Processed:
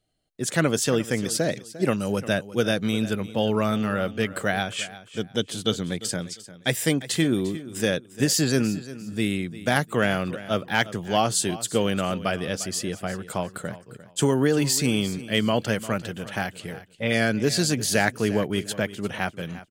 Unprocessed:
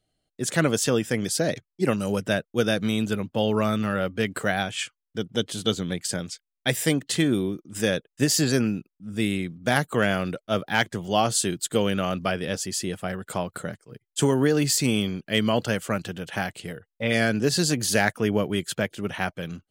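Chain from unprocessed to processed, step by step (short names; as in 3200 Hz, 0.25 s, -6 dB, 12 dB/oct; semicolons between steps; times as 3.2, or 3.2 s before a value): feedback echo 0.35 s, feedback 25%, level -16 dB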